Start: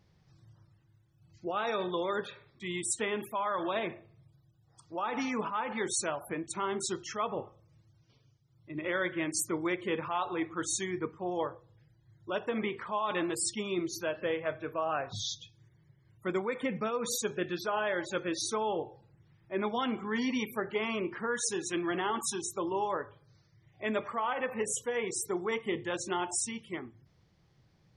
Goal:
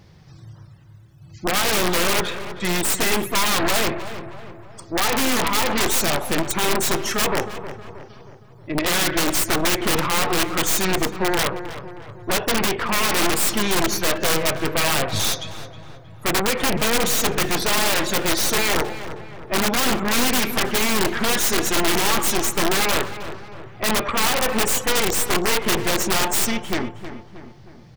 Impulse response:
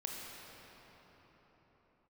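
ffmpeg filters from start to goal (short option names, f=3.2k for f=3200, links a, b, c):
-filter_complex "[0:a]aeval=exprs='0.112*(cos(1*acos(clip(val(0)/0.112,-1,1)))-cos(1*PI/2))+0.0447*(cos(4*acos(clip(val(0)/0.112,-1,1)))-cos(4*PI/2))+0.0398*(cos(7*acos(clip(val(0)/0.112,-1,1)))-cos(7*PI/2))+0.00562*(cos(8*acos(clip(val(0)/0.112,-1,1)))-cos(8*PI/2))':c=same,acontrast=31,aeval=exprs='(mod(10.6*val(0)+1,2)-1)/10.6':c=same,asplit=2[a][b];[b]adelay=315,lowpass=f=2.3k:p=1,volume=-11dB,asplit=2[c][d];[d]adelay=315,lowpass=f=2.3k:p=1,volume=0.52,asplit=2[e][f];[f]adelay=315,lowpass=f=2.3k:p=1,volume=0.52,asplit=2[g][h];[h]adelay=315,lowpass=f=2.3k:p=1,volume=0.52,asplit=2[i][j];[j]adelay=315,lowpass=f=2.3k:p=1,volume=0.52,asplit=2[k][l];[l]adelay=315,lowpass=f=2.3k:p=1,volume=0.52[m];[c][e][g][i][k][m]amix=inputs=6:normalize=0[n];[a][n]amix=inputs=2:normalize=0,volume=8.5dB"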